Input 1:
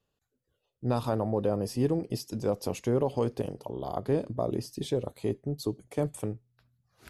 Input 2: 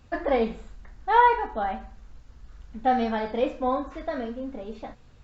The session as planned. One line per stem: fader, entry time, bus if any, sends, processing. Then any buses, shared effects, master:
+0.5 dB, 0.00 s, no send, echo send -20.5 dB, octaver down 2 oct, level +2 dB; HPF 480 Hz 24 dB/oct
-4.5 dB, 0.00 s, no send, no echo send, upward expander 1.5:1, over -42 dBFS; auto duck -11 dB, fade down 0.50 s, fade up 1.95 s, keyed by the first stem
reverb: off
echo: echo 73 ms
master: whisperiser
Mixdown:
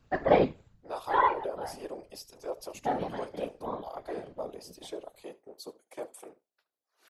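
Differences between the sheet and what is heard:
stem 1 +0.5 dB -> -5.5 dB; stem 2 -4.5 dB -> +5.0 dB

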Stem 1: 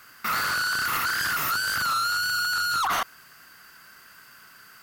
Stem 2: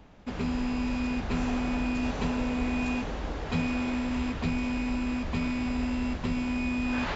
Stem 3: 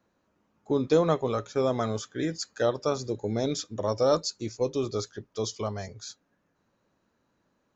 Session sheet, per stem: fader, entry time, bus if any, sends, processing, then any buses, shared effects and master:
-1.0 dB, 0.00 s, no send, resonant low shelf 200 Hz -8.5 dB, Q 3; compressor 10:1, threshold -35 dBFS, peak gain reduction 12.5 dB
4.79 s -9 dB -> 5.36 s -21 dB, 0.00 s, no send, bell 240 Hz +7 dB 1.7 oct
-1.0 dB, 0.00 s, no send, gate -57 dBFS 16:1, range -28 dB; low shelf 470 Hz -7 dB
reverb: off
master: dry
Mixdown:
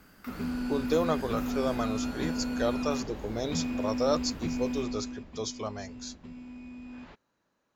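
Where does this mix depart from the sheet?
stem 1 -1.0 dB -> -11.0 dB; stem 3: missing gate -57 dBFS 16:1, range -28 dB

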